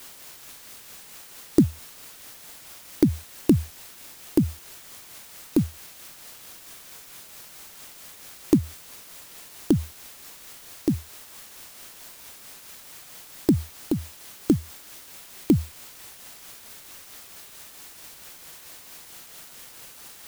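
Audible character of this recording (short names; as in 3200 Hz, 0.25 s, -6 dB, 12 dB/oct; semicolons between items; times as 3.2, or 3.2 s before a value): a quantiser's noise floor 8-bit, dither triangular; tremolo triangle 4.5 Hz, depth 40%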